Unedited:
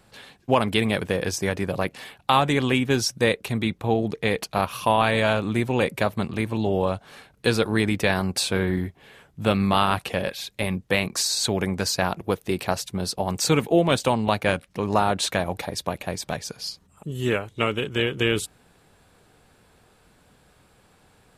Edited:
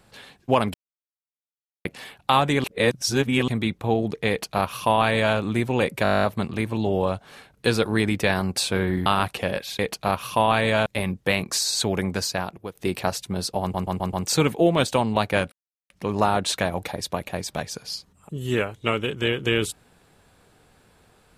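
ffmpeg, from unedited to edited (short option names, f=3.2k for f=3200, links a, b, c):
-filter_complex "[0:a]asplit=24[a][b][c][d][e][f][g][h][i][j][k][l][m][n][o][p][q][r][s][t][u][v][w][x];[a]atrim=end=0.74,asetpts=PTS-STARTPTS,afade=t=out:st=0.736:d=0.004:c=hsin[y];[b]atrim=start=0.74:end=1.85,asetpts=PTS-STARTPTS,volume=0[z];[c]atrim=start=1.85:end=2.642,asetpts=PTS-STARTPTS,afade=t=in:d=0.004:c=hsin[aa];[d]atrim=start=2.638:end=3.482,asetpts=PTS-STARTPTS,areverse[ab];[e]atrim=start=3.478:end=6.052[ac];[f]atrim=start=6.028:end=6.052[ad];[g]atrim=start=6.028:end=6.052[ae];[h]atrim=start=6.028:end=6.052[af];[i]atrim=start=6.028:end=6.052[ag];[j]atrim=start=6.028:end=6.052[ah];[k]atrim=start=6.028:end=6.052[ai];[l]atrim=start=6.028:end=6.052[aj];[m]atrim=start=6.028:end=6.052[ak];[n]atrim=start=6.028:end=6.052[al];[o]atrim=start=6.028:end=8.862[am];[p]atrim=start=9.768:end=10.502[an];[q]atrim=start=4.288:end=5.362[ao];[r]atrim=start=10.498:end=12.39,asetpts=PTS-STARTPTS,afade=t=out:st=1.252:d=0.64:silence=0.199526[ap];[s]atrim=start=12.39:end=13.382,asetpts=PTS-STARTPTS,afade=t=in:d=0.004:c=hsin:silence=0.199526[aq];[t]atrim=start=13.248:end=13.382[ar];[u]atrim=start=13.248:end=13.382[as];[v]atrim=start=13.248:end=13.382[at];[w]atrim=start=13.248:end=14.64,asetpts=PTS-STARTPTS,afade=t=out:st=1.388:d=0.004:c=hsin,apad=pad_dur=0.38[au];[x]atrim=start=14.64,asetpts=PTS-STARTPTS,afade=t=in:d=0.004:c=hsin[av];[y][z][aa]concat=n=3:v=0:a=1[aw];[aw][ab]acrossfade=d=0.004:c1=hsin:c2=hsin[ax];[ax][ac]acrossfade=d=0.004:c1=hsin:c2=hsin[ay];[ay][ad]acrossfade=d=0.004:c1=hsin:c2=hsin[az];[az][ae]acrossfade=d=0.004:c1=hsin:c2=hsin[ba];[ba][af]acrossfade=d=0.004:c1=hsin:c2=hsin[bb];[bb][ag]acrossfade=d=0.004:c1=hsin:c2=hsin[bc];[bc][ah]acrossfade=d=0.004:c1=hsin:c2=hsin[bd];[bd][ai]acrossfade=d=0.004:c1=hsin:c2=hsin[be];[be][aj]acrossfade=d=0.004:c1=hsin:c2=hsin[bf];[bf][ak]acrossfade=d=0.004:c1=hsin:c2=hsin[bg];[bg][al]acrossfade=d=0.004:c1=hsin:c2=hsin[bh];[bh][am]acrossfade=d=0.004:c1=hsin:c2=hsin[bi];[bi][an]acrossfade=d=0.004:c1=hsin:c2=hsin[bj];[bj][ao]acrossfade=d=0.004:c1=hsin:c2=hsin[bk];[ap][aq]concat=n=2:v=0:a=1[bl];[bk][bl]acrossfade=d=0.004:c1=hsin:c2=hsin[bm];[bm][ar]acrossfade=d=0.004:c1=hsin:c2=hsin[bn];[bn][as]acrossfade=d=0.004:c1=hsin:c2=hsin[bo];[bo][at]acrossfade=d=0.004:c1=hsin:c2=hsin[bp];[au][av]concat=n=2:v=0:a=1[bq];[bp][bq]acrossfade=d=0.004:c1=hsin:c2=hsin"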